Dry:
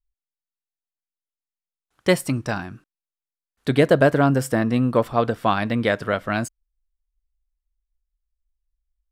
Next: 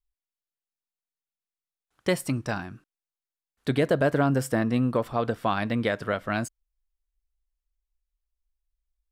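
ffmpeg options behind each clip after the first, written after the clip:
-af "alimiter=limit=0.355:level=0:latency=1:release=105,volume=0.631"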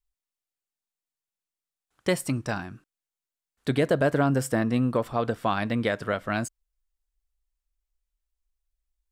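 -af "equalizer=f=7800:w=2.1:g=3"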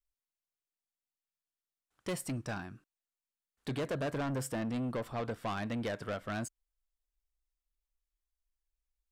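-af "asoftclip=type=tanh:threshold=0.0398,aeval=exprs='0.0398*(cos(1*acos(clip(val(0)/0.0398,-1,1)))-cos(1*PI/2))+0.00398*(cos(3*acos(clip(val(0)/0.0398,-1,1)))-cos(3*PI/2))':c=same,volume=0.631"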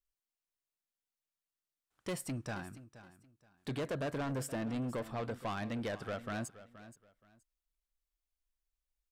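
-af "aecho=1:1:474|948:0.168|0.0403,volume=0.794"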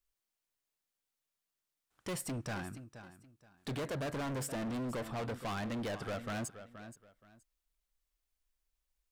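-af "asoftclip=type=hard:threshold=0.0106,volume=1.58"

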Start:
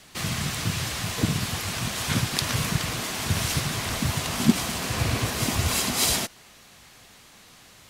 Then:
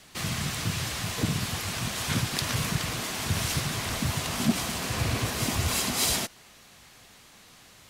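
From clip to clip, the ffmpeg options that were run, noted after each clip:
-af "asoftclip=type=tanh:threshold=0.237,volume=0.794"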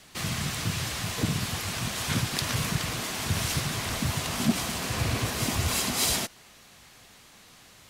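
-af anull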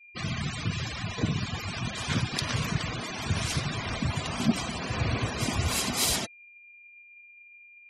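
-af "aeval=exprs='val(0)+0.00447*sin(2*PI*2400*n/s)':c=same,afftfilt=real='re*gte(hypot(re,im),0.0282)':imag='im*gte(hypot(re,im),0.0282)':win_size=1024:overlap=0.75"

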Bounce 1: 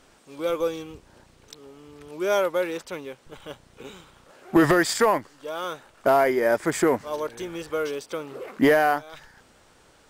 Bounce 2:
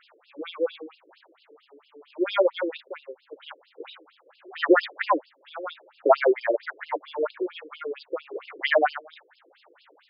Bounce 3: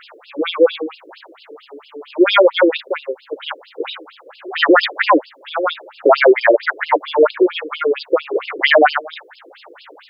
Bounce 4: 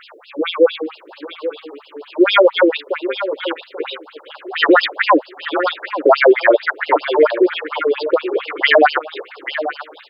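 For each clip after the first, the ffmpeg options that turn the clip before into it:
-af "tremolo=f=0.82:d=0.48,afftfilt=real='re*between(b*sr/1024,370*pow(3800/370,0.5+0.5*sin(2*PI*4.4*pts/sr))/1.41,370*pow(3800/370,0.5+0.5*sin(2*PI*4.4*pts/sr))*1.41)':imag='im*between(b*sr/1024,370*pow(3800/370,0.5+0.5*sin(2*PI*4.4*pts/sr))/1.41,370*pow(3800/370,0.5+0.5*sin(2*PI*4.4*pts/sr))*1.41)':win_size=1024:overlap=0.75,volume=2.24"
-af "alimiter=level_in=7.08:limit=0.891:release=50:level=0:latency=1,volume=0.891"
-af "aecho=1:1:836:0.266"

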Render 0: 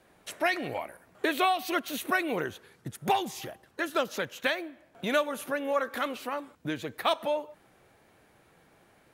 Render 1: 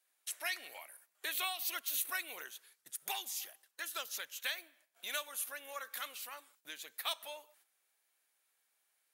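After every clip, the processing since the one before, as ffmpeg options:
-af "agate=range=0.355:threshold=0.00178:ratio=16:detection=peak,highpass=f=380:p=1,aderivative,volume=1.26"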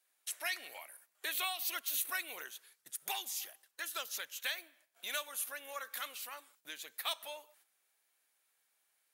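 -af "asoftclip=type=tanh:threshold=0.075,volume=1.12"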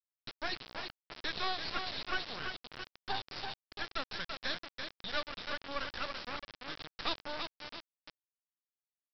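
-af "asuperstop=centerf=2500:order=8:qfactor=1.3,aecho=1:1:335|670|1005|1340|1675:0.473|0.218|0.1|0.0461|0.0212,aresample=11025,acrusher=bits=5:dc=4:mix=0:aa=0.000001,aresample=44100,volume=2.82"

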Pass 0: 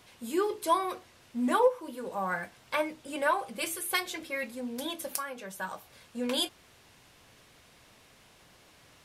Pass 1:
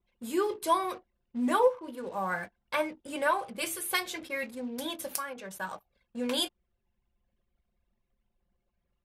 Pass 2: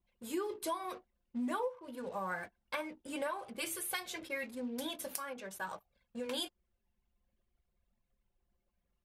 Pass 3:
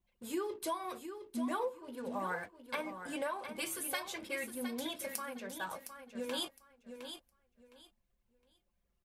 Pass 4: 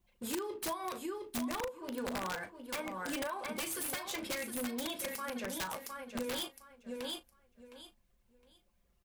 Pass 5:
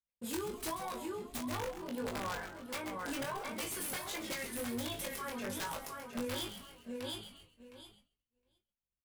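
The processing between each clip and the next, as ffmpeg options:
-af "anlmdn=0.01"
-af "acompressor=threshold=0.0282:ratio=6,flanger=delay=1.1:depth=3.6:regen=-61:speed=0.5:shape=triangular,volume=1.12"
-af "aecho=1:1:712|1424|2136:0.355|0.0745|0.0156"
-filter_complex "[0:a]acompressor=threshold=0.00891:ratio=8,aeval=exprs='(mod(66.8*val(0)+1,2)-1)/66.8':c=same,asplit=2[s0][s1];[s1]adelay=37,volume=0.224[s2];[s0][s2]amix=inputs=2:normalize=0,volume=2.11"
-filter_complex "[0:a]asplit=6[s0][s1][s2][s3][s4][s5];[s1]adelay=133,afreqshift=-140,volume=0.316[s6];[s2]adelay=266,afreqshift=-280,volume=0.146[s7];[s3]adelay=399,afreqshift=-420,volume=0.0668[s8];[s4]adelay=532,afreqshift=-560,volume=0.0309[s9];[s5]adelay=665,afreqshift=-700,volume=0.0141[s10];[s0][s6][s7][s8][s9][s10]amix=inputs=6:normalize=0,flanger=delay=19:depth=2.8:speed=1.4,agate=range=0.0224:threshold=0.00126:ratio=3:detection=peak,volume=1.19"

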